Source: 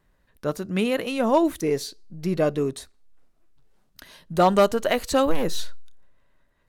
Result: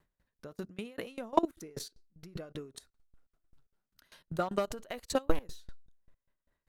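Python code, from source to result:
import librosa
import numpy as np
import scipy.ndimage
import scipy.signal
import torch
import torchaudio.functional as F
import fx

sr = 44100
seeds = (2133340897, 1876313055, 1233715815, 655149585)

y = fx.peak_eq(x, sr, hz=1400.0, db=8.0, octaves=0.25, at=(1.38, 4.51))
y = fx.level_steps(y, sr, step_db=18)
y = fx.tremolo_decay(y, sr, direction='decaying', hz=5.1, depth_db=25)
y = F.gain(torch.from_numpy(y), 1.5).numpy()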